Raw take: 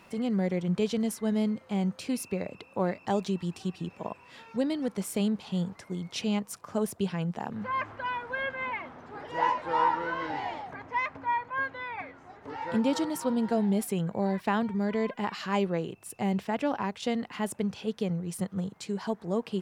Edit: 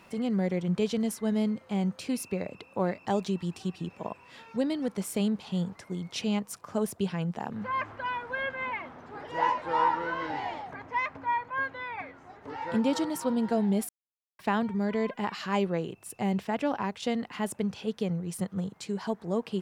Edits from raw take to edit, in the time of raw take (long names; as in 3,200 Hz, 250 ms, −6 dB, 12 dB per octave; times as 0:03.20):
0:13.89–0:14.39: silence